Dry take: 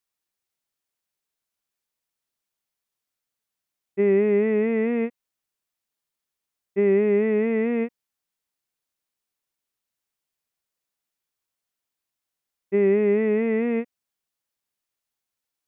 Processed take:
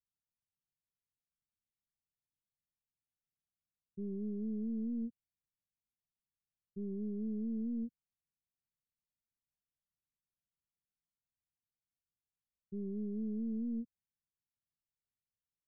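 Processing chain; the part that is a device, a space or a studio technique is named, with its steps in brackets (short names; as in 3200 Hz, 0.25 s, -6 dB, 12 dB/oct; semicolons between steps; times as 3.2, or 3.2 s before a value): overdriven synthesiser ladder filter (soft clip -22 dBFS, distortion -11 dB; ladder low-pass 220 Hz, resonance 20%); gain +3 dB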